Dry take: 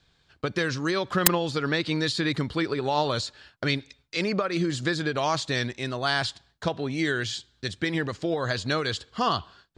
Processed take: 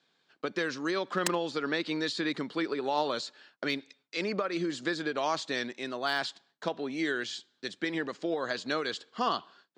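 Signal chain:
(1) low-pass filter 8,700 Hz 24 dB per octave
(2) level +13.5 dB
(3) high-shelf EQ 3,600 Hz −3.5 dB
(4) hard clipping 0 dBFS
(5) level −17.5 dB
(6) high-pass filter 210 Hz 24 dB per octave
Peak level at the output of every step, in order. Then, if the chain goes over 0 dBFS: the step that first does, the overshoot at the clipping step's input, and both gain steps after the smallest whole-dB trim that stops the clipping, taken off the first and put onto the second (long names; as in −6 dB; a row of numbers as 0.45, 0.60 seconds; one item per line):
−4.0, +9.5, +7.5, 0.0, −17.5, −14.5 dBFS
step 2, 7.5 dB
step 2 +5.5 dB, step 5 −9.5 dB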